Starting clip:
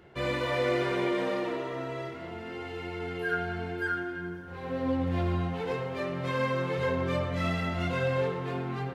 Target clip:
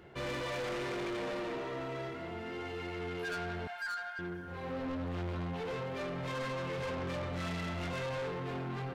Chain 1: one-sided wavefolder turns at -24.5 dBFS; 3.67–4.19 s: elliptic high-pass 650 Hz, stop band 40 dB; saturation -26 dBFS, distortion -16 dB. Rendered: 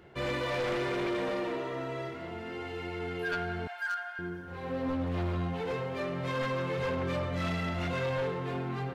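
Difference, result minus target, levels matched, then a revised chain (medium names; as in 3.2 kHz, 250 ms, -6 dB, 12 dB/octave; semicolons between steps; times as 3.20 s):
saturation: distortion -8 dB
one-sided wavefolder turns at -24.5 dBFS; 3.67–4.19 s: elliptic high-pass 650 Hz, stop band 40 dB; saturation -35 dBFS, distortion -8 dB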